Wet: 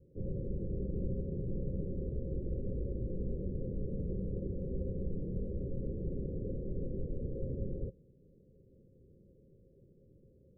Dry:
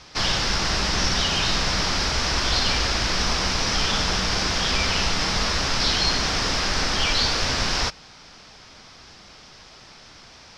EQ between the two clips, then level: rippled Chebyshev low-pass 550 Hz, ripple 6 dB; -5.0 dB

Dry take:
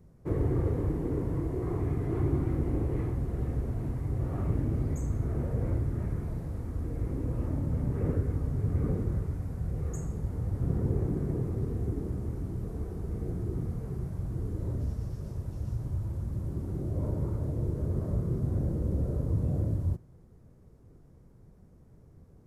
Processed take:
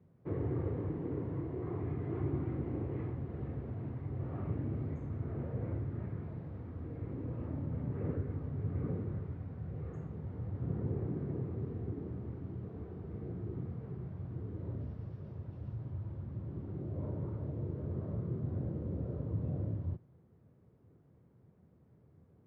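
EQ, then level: HPF 83 Hz 24 dB/oct; LPF 3400 Hz 24 dB/oct; -6.0 dB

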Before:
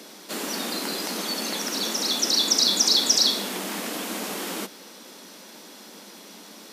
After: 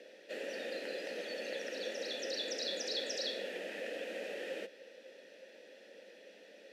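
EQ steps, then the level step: vowel filter e; +2.0 dB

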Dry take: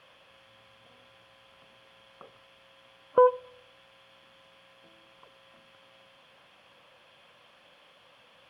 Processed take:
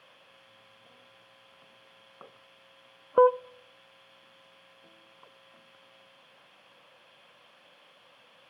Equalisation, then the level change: HPF 130 Hz 12 dB/oct; 0.0 dB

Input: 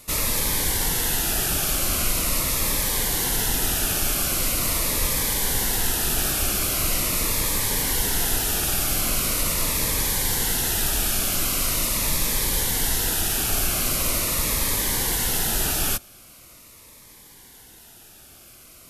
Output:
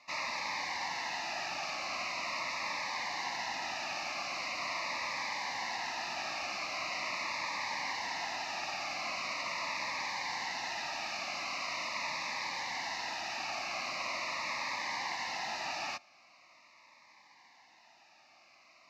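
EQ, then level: BPF 610–7500 Hz; air absorption 220 m; fixed phaser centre 2200 Hz, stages 8; 0.0 dB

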